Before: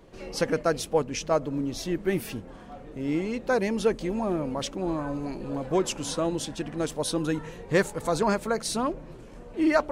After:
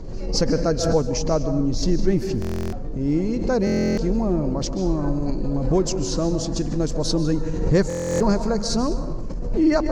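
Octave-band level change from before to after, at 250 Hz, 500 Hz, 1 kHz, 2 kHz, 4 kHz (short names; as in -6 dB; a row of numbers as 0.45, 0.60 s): +7.0, +4.0, 0.0, -3.0, +5.0 dB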